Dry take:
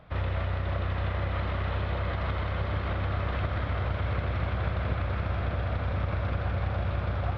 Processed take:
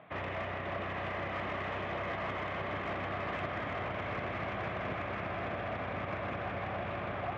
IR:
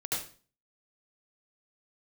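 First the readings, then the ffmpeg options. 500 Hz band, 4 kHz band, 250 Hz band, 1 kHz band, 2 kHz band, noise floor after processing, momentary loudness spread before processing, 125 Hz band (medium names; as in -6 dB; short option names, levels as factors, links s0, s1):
-1.5 dB, -3.5 dB, -3.5 dB, -0.5 dB, -0.5 dB, -39 dBFS, 1 LU, -14.5 dB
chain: -filter_complex "[0:a]highpass=150,equalizer=f=510:t=q:w=4:g=-7,equalizer=f=910:t=q:w=4:g=-5,equalizer=f=1400:t=q:w=4:g=-9,lowpass=f=3100:w=0.5412,lowpass=f=3100:w=1.3066,asplit=2[s0][s1];[s1]highpass=f=720:p=1,volume=6.31,asoftclip=type=tanh:threshold=0.075[s2];[s0][s2]amix=inputs=2:normalize=0,lowpass=f=1700:p=1,volume=0.501,volume=0.75"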